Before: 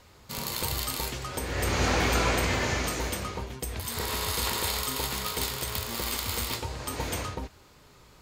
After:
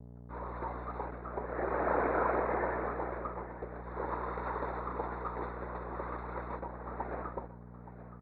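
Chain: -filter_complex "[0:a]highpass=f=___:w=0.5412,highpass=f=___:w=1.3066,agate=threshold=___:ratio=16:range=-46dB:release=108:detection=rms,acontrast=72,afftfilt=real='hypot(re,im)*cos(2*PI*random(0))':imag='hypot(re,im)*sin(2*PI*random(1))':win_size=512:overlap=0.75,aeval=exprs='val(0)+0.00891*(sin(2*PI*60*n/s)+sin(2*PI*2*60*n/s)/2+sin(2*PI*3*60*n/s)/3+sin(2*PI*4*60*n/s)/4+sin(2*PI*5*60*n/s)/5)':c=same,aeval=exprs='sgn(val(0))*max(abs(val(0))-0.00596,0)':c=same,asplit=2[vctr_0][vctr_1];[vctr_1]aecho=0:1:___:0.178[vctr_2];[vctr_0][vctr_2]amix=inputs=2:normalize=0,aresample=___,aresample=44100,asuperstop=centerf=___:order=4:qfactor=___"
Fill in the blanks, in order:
350, 350, -55dB, 872, 8000, 3100, 0.58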